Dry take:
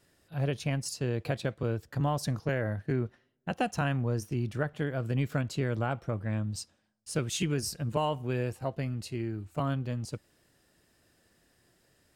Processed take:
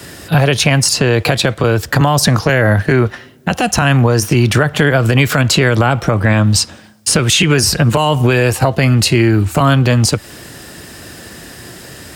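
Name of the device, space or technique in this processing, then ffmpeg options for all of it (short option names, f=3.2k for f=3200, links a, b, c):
mastering chain: -filter_complex "[0:a]highpass=54,equalizer=f=570:t=o:w=0.78:g=-2.5,acrossover=split=100|500|3500[a][b][c][d];[a]acompressor=threshold=-51dB:ratio=4[e];[b]acompressor=threshold=-44dB:ratio=4[f];[c]acompressor=threshold=-39dB:ratio=4[g];[d]acompressor=threshold=-47dB:ratio=4[h];[e][f][g][h]amix=inputs=4:normalize=0,acompressor=threshold=-42dB:ratio=3,alimiter=level_in=35.5dB:limit=-1dB:release=50:level=0:latency=1,volume=-1dB"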